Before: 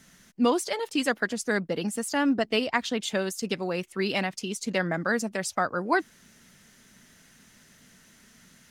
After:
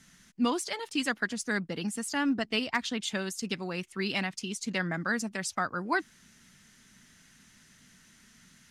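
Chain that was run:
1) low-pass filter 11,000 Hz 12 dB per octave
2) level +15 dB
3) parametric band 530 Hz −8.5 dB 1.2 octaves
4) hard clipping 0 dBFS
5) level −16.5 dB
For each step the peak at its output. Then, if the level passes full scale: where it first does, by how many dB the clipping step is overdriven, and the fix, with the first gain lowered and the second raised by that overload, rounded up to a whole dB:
−9.0, +6.0, +4.0, 0.0, −16.5 dBFS
step 2, 4.0 dB
step 2 +11 dB, step 5 −12.5 dB

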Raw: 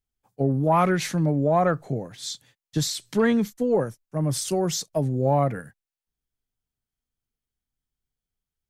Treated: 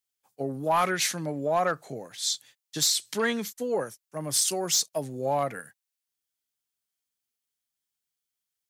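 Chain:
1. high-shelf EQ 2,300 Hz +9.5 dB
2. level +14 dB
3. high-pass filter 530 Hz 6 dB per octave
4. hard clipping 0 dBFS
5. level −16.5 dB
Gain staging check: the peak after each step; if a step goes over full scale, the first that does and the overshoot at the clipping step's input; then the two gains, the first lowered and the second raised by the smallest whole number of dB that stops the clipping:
−7.5, +6.5, +5.5, 0.0, −16.5 dBFS
step 2, 5.5 dB
step 2 +8 dB, step 5 −10.5 dB

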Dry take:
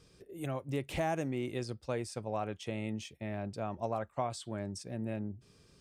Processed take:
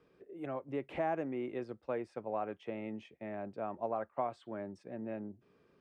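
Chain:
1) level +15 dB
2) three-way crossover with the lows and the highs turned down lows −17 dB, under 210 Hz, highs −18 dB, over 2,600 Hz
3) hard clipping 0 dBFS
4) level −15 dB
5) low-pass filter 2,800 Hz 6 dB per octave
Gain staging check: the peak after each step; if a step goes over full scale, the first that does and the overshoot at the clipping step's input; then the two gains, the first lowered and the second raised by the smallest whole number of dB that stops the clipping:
−5.5, −6.0, −6.0, −21.0, −21.5 dBFS
no step passes full scale

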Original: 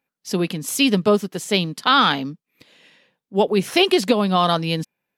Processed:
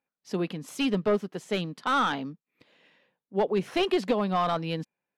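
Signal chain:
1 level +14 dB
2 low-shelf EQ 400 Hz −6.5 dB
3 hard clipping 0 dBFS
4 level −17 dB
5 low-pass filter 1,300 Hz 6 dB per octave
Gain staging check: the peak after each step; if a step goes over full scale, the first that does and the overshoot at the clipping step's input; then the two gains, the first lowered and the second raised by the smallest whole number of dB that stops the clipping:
+9.5, +9.5, 0.0, −17.0, −17.0 dBFS
step 1, 9.5 dB
step 1 +4 dB, step 4 −7 dB

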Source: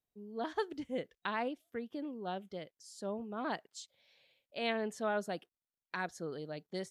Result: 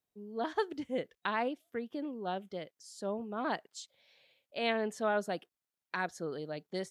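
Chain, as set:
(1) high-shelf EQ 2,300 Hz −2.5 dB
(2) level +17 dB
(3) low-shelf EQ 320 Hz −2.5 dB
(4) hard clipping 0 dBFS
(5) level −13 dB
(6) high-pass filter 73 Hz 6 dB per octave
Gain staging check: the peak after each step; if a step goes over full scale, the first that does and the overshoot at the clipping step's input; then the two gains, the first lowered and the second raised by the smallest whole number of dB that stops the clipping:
−22.0, −5.0, −5.0, −5.0, −18.0, −18.0 dBFS
no step passes full scale

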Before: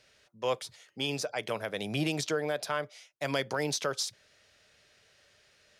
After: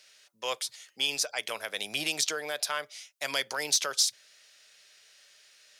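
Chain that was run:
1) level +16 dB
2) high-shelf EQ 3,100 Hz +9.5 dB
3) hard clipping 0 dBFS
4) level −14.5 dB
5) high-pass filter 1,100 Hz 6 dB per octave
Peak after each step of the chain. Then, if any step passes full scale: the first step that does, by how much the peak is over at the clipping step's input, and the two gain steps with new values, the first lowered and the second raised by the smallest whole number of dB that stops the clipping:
−1.5, +3.5, 0.0, −14.5, −13.0 dBFS
step 2, 3.5 dB
step 1 +12 dB, step 4 −10.5 dB

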